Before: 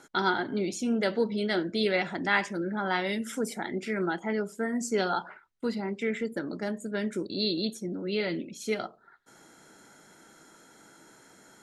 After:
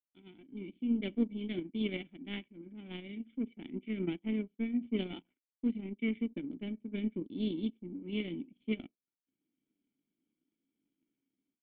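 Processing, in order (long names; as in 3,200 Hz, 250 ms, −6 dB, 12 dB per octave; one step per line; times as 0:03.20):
automatic gain control gain up to 15.5 dB
power curve on the samples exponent 2
formant resonators in series i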